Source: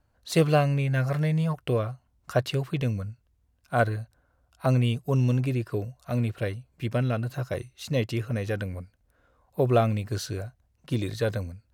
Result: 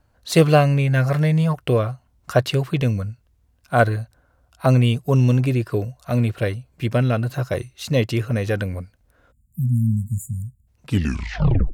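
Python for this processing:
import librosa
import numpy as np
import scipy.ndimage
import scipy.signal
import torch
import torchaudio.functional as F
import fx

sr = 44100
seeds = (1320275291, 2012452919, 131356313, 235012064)

y = fx.tape_stop_end(x, sr, length_s=0.93)
y = fx.spec_erase(y, sr, start_s=9.32, length_s=1.35, low_hz=250.0, high_hz=6800.0)
y = F.gain(torch.from_numpy(y), 7.0).numpy()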